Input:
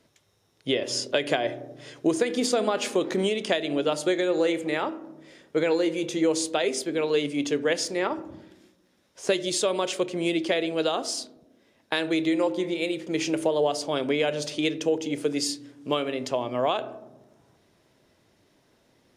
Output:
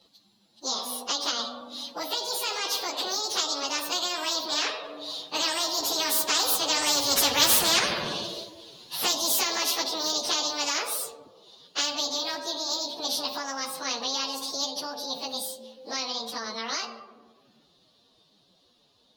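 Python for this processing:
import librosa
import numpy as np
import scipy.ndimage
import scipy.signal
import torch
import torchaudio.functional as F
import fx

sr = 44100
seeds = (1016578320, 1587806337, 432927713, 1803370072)

y = fx.pitch_bins(x, sr, semitones=11.0)
y = fx.doppler_pass(y, sr, speed_mps=13, closest_m=2.8, pass_at_s=7.5)
y = fx.curve_eq(y, sr, hz=(220.0, 1500.0, 2200.0, 4100.0, 7400.0), db=(0, -8, -7, 14, -9))
y = fx.spectral_comp(y, sr, ratio=4.0)
y = F.gain(torch.from_numpy(y), 6.0).numpy()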